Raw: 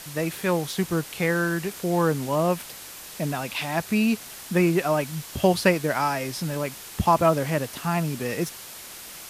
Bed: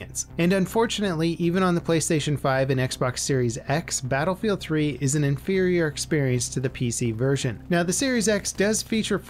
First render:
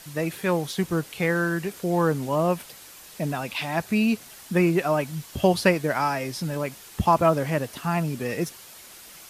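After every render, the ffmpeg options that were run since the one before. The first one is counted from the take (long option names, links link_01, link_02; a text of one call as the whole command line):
ffmpeg -i in.wav -af "afftdn=noise_reduction=6:noise_floor=-41" out.wav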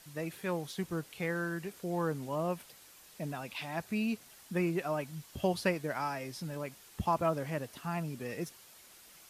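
ffmpeg -i in.wav -af "volume=-11dB" out.wav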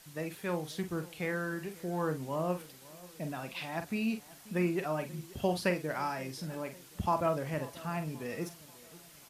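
ffmpeg -i in.wav -filter_complex "[0:a]asplit=2[link_01][link_02];[link_02]adelay=45,volume=-9dB[link_03];[link_01][link_03]amix=inputs=2:normalize=0,asplit=2[link_04][link_05];[link_05]adelay=536,lowpass=frequency=2000:poles=1,volume=-20dB,asplit=2[link_06][link_07];[link_07]adelay=536,lowpass=frequency=2000:poles=1,volume=0.5,asplit=2[link_08][link_09];[link_09]adelay=536,lowpass=frequency=2000:poles=1,volume=0.5,asplit=2[link_10][link_11];[link_11]adelay=536,lowpass=frequency=2000:poles=1,volume=0.5[link_12];[link_04][link_06][link_08][link_10][link_12]amix=inputs=5:normalize=0" out.wav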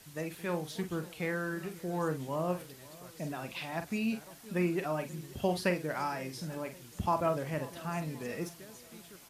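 ffmpeg -i in.wav -i bed.wav -filter_complex "[1:a]volume=-30.5dB[link_01];[0:a][link_01]amix=inputs=2:normalize=0" out.wav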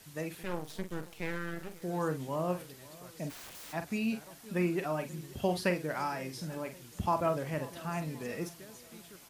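ffmpeg -i in.wav -filter_complex "[0:a]asettb=1/sr,asplit=3[link_01][link_02][link_03];[link_01]atrim=end=0.434[link_04];[link_02]atrim=start=0.43:end=1.82,asetpts=PTS-STARTPTS,afade=type=in:duration=0.004:curve=qsin,afade=type=out:start_time=1.386:duration=0.004:curve=qsin,aeval=exprs='max(val(0),0)':channel_layout=same[link_05];[link_03]atrim=start=1.816[link_06];[link_04][link_05]acrossfade=duration=0.004:curve1=hsin:curve2=qsin[link_07];[link_07][link_06]acrossfade=duration=0.004:curve1=qsin:curve2=hsin,asplit=3[link_08][link_09][link_10];[link_08]afade=type=out:start_time=3.29:duration=0.02[link_11];[link_09]aeval=exprs='(mod(141*val(0)+1,2)-1)/141':channel_layout=same,afade=type=in:start_time=3.29:duration=0.02,afade=type=out:start_time=3.72:duration=0.02[link_12];[link_10]afade=type=in:start_time=3.72:duration=0.02[link_13];[link_11][link_12][link_13]amix=inputs=3:normalize=0" out.wav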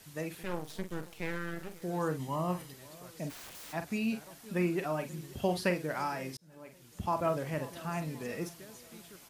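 ffmpeg -i in.wav -filter_complex "[0:a]asettb=1/sr,asplit=3[link_01][link_02][link_03];[link_01]atrim=end=2.194[link_04];[link_02]atrim=start=2.19:end=2.74,asetpts=PTS-STARTPTS,afade=type=in:duration=0.004:curve=qsin,afade=type=out:start_time=0.546:duration=0.004:curve=qsin,aecho=1:1:1:0.48,atrim=end_sample=24255[link_05];[link_03]atrim=start=2.736[link_06];[link_04][link_05]acrossfade=duration=0.004:curve1=hsin:curve2=qsin[link_07];[link_07][link_06]acrossfade=duration=0.004:curve1=qsin:curve2=hsin,asplit=2[link_08][link_09];[link_08]atrim=end=6.37,asetpts=PTS-STARTPTS,afade=type=out:start_time=6.366:duration=0.004:curve=hsin[link_10];[link_09]atrim=start=6.37,asetpts=PTS-STARTPTS,afade=type=in:duration=0.95[link_11];[link_10][link_11]concat=n=2:v=0:a=1" out.wav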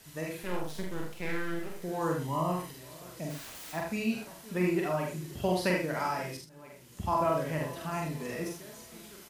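ffmpeg -i in.wav -filter_complex "[0:a]asplit=2[link_01][link_02];[link_02]adelay=47,volume=-9.5dB[link_03];[link_01][link_03]amix=inputs=2:normalize=0,aecho=1:1:44|77:0.668|0.562" out.wav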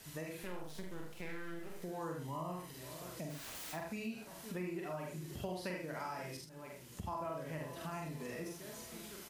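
ffmpeg -i in.wav -af "acompressor=threshold=-43dB:ratio=3" out.wav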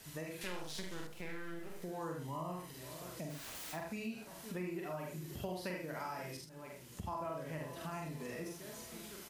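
ffmpeg -i in.wav -filter_complex "[0:a]asettb=1/sr,asplit=3[link_01][link_02][link_03];[link_01]atrim=end=0.414[link_04];[link_02]atrim=start=0.41:end=1.07,asetpts=PTS-STARTPTS,afade=type=in:duration=0.004:curve=qsin,afade=type=out:start_time=0.656:duration=0.004:curve=qsin,equalizer=frequency=4600:width_type=o:width=2.6:gain=11[link_05];[link_03]atrim=start=1.066[link_06];[link_04][link_05]acrossfade=duration=0.004:curve1=hsin:curve2=qsin[link_07];[link_07][link_06]acrossfade=duration=0.004:curve1=qsin:curve2=hsin,asettb=1/sr,asplit=3[link_08][link_09][link_10];[link_08]atrim=end=4.714[link_11];[link_09]atrim=start=4.71:end=6.33,asetpts=PTS-STARTPTS,afade=type=in:duration=0.004:curve=qsin,afade=type=out:start_time=1.616:duration=0.004:curve=qsin,equalizer=frequency=13000:width=7:gain=8[link_12];[link_10]atrim=start=6.326[link_13];[link_11][link_12]acrossfade=duration=0.004:curve1=hsin:curve2=qsin[link_14];[link_14][link_13]acrossfade=duration=0.004:curve1=qsin:curve2=hsin" out.wav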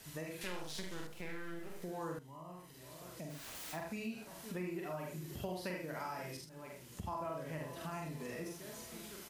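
ffmpeg -i in.wav -filter_complex "[0:a]asplit=2[link_01][link_02];[link_01]atrim=end=2.19,asetpts=PTS-STARTPTS,afade=type=out:start_time=2.186:duration=0.004:curve=hsin:silence=0.223872[link_03];[link_02]atrim=start=2.19,asetpts=PTS-STARTPTS,afade=type=in:duration=1.55:silence=0.223872[link_04];[link_03][link_04]concat=n=2:v=0:a=1" out.wav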